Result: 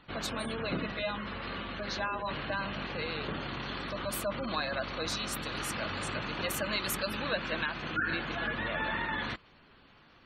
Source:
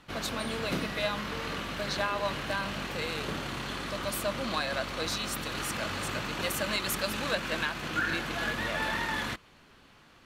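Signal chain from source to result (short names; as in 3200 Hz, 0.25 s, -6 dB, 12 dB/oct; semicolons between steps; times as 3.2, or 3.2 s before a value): spectral gate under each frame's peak -20 dB strong; 0.92–2.31 notch comb 150 Hz; gain -1.5 dB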